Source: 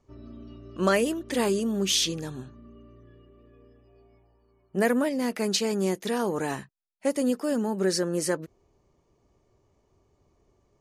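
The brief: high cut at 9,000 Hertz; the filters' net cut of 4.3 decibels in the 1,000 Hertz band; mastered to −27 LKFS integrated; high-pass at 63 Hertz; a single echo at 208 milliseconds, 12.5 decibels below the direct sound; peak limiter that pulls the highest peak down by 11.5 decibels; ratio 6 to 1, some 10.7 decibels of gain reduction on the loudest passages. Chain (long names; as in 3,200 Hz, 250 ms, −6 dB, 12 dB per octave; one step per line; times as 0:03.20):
high-pass filter 63 Hz
low-pass filter 9,000 Hz
parametric band 1,000 Hz −6 dB
downward compressor 6 to 1, threshold −32 dBFS
brickwall limiter −32.5 dBFS
single-tap delay 208 ms −12.5 dB
level +14.5 dB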